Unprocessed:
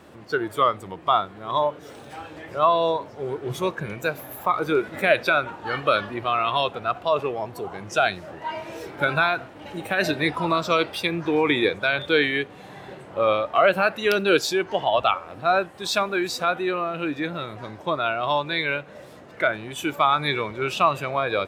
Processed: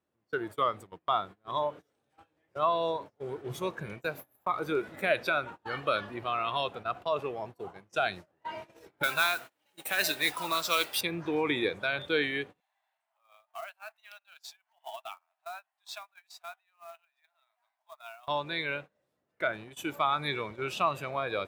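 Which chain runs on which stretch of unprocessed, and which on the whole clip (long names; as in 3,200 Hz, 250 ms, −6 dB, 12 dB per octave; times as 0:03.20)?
0:09.03–0:11.01: spectral tilt +4 dB per octave + noise that follows the level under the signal 15 dB
0:12.60–0:18.28: downward compressor 3 to 1, threshold −29 dBFS + Chebyshev high-pass with heavy ripple 640 Hz, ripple 3 dB + floating-point word with a short mantissa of 2 bits
whole clip: noise gate −33 dBFS, range −27 dB; high-shelf EQ 9,500 Hz +5 dB; level −8.5 dB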